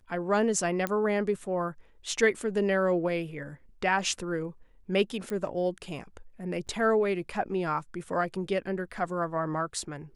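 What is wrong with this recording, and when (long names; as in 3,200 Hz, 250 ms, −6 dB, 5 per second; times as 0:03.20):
0:00.87: click −15 dBFS
0:05.30: click −22 dBFS
0:06.67–0:06.68: drop-out 6.4 ms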